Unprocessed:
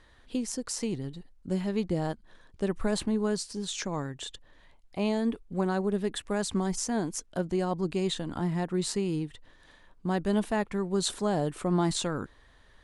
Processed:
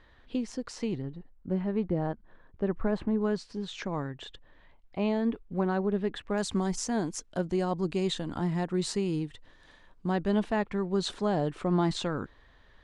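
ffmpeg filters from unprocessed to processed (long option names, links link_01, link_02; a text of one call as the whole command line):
ffmpeg -i in.wav -af "asetnsamples=nb_out_samples=441:pad=0,asendcmd='1.02 lowpass f 1700;3.21 lowpass f 3000;6.38 lowpass f 7600;10.11 lowpass f 4400',lowpass=3700" out.wav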